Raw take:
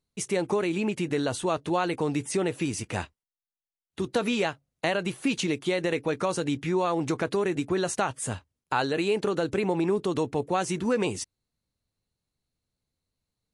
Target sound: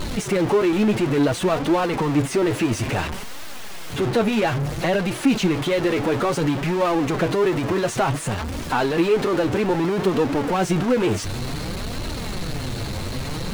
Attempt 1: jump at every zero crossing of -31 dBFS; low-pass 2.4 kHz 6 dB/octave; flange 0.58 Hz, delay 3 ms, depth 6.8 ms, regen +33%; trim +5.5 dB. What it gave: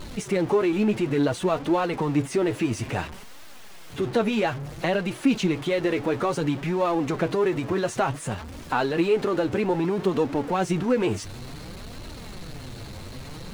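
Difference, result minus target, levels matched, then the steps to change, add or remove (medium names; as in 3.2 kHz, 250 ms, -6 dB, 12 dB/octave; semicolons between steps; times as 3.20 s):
jump at every zero crossing: distortion -7 dB
change: jump at every zero crossing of -20.5 dBFS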